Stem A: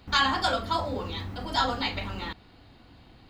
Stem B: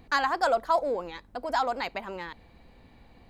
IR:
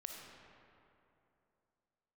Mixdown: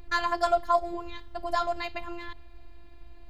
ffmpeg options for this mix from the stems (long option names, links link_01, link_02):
-filter_complex "[0:a]acrossover=split=480|3000[link_01][link_02][link_03];[link_02]acompressor=threshold=-34dB:ratio=6[link_04];[link_01][link_04][link_03]amix=inputs=3:normalize=0,volume=-14.5dB,asplit=2[link_05][link_06];[link_06]volume=-6.5dB[link_07];[1:a]volume=-1,volume=2dB[link_08];[2:a]atrim=start_sample=2205[link_09];[link_07][link_09]afir=irnorm=-1:irlink=0[link_10];[link_05][link_08][link_10]amix=inputs=3:normalize=0,lowshelf=frequency=100:width_type=q:width=1.5:gain=12,afftfilt=real='hypot(re,im)*cos(PI*b)':imag='0':win_size=512:overlap=0.75"